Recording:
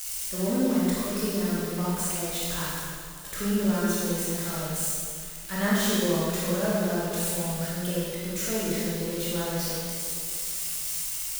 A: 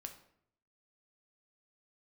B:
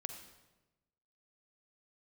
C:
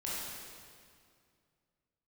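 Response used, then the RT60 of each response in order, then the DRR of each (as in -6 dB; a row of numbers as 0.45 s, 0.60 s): C; 0.70 s, 1.1 s, 2.2 s; 5.0 dB, 6.5 dB, -8.0 dB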